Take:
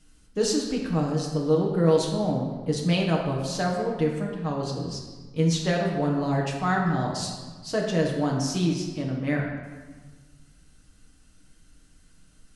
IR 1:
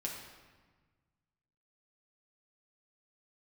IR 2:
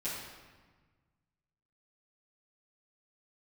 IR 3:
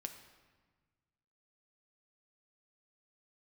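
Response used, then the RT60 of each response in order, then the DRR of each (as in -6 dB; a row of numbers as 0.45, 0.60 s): 1; 1.4, 1.4, 1.4 s; -2.0, -11.5, 6.0 dB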